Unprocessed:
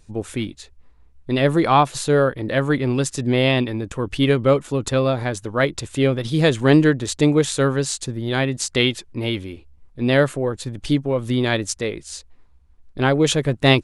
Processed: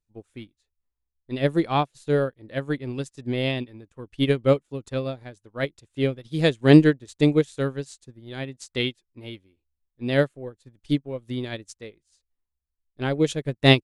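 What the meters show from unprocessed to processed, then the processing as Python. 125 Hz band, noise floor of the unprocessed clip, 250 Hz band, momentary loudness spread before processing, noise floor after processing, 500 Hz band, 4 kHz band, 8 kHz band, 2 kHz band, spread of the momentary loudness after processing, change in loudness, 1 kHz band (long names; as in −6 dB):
−4.5 dB, −51 dBFS, −3.5 dB, 11 LU, −83 dBFS, −5.0 dB, −5.5 dB, below −15 dB, −6.5 dB, 19 LU, −4.0 dB, −9.0 dB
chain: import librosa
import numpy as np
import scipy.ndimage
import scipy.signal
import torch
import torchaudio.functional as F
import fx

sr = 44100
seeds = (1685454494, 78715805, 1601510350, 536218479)

y = fx.dynamic_eq(x, sr, hz=1100.0, q=1.2, threshold_db=-33.0, ratio=4.0, max_db=-6)
y = fx.upward_expand(y, sr, threshold_db=-34.0, expansion=2.5)
y = y * librosa.db_to_amplitude(3.0)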